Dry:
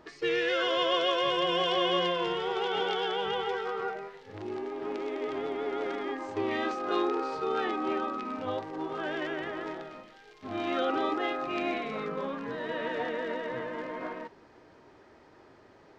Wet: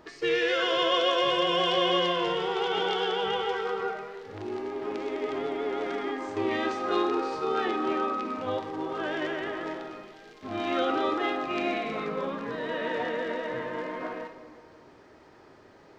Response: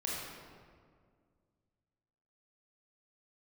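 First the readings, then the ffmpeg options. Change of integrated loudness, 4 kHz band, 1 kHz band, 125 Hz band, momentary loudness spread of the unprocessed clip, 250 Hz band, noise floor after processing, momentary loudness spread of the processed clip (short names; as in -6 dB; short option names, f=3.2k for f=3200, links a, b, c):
+2.5 dB, +3.0 dB, +2.5 dB, +2.5 dB, 11 LU, +2.5 dB, -54 dBFS, 12 LU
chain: -filter_complex "[0:a]asplit=2[a][b];[1:a]atrim=start_sample=2205,highshelf=f=4.3k:g=11[c];[b][c]afir=irnorm=-1:irlink=0,volume=-10.5dB[d];[a][d]amix=inputs=2:normalize=0"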